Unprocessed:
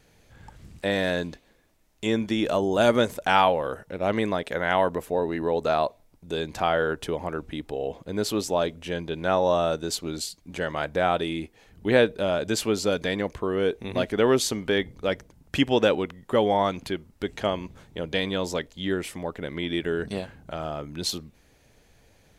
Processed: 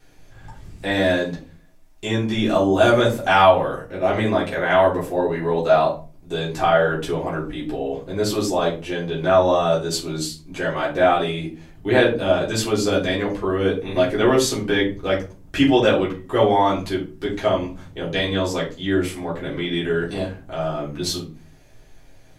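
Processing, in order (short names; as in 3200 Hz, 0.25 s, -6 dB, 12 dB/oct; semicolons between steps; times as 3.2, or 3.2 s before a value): shoebox room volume 180 m³, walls furnished, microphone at 3.6 m; gain -3 dB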